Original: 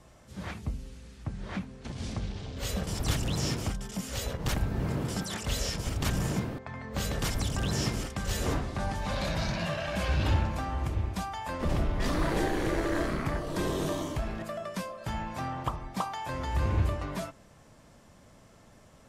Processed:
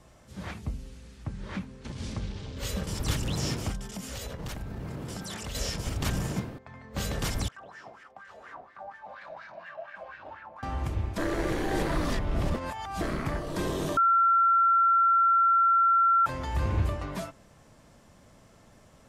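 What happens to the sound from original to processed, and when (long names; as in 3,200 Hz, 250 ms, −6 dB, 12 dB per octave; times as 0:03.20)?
0:01.27–0:03.29: notch filter 710 Hz, Q 6.8
0:03.80–0:05.55: downward compressor, threshold −33 dBFS
0:06.18–0:06.97: expander for the loud parts, over −43 dBFS
0:07.48–0:10.63: LFO wah 4.2 Hz 640–1,800 Hz, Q 5.7
0:11.18–0:13.01: reverse
0:13.97–0:16.26: beep over 1,360 Hz −18.5 dBFS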